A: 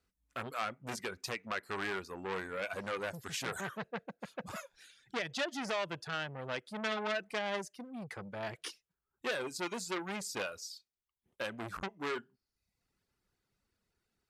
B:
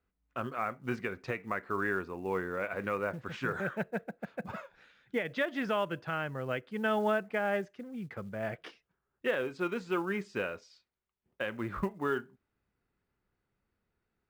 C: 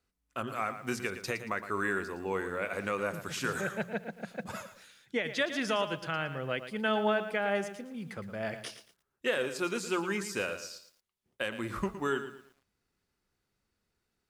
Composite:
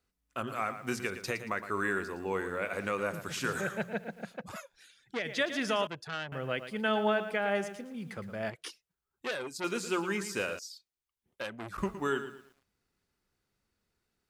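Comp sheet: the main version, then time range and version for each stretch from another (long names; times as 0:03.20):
C
0:04.32–0:05.22: punch in from A, crossfade 0.24 s
0:05.87–0:06.32: punch in from A
0:08.50–0:09.64: punch in from A
0:10.59–0:11.78: punch in from A
not used: B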